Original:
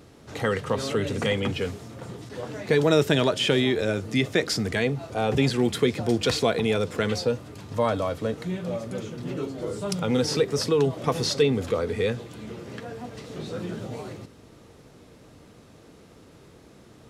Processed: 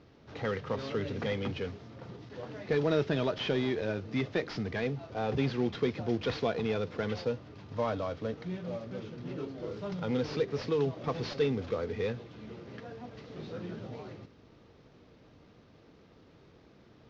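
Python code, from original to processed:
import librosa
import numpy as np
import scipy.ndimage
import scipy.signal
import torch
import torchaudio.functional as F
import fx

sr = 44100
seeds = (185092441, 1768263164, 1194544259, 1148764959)

y = fx.cvsd(x, sr, bps=32000)
y = fx.air_absorb(y, sr, metres=120.0)
y = y * librosa.db_to_amplitude(-7.0)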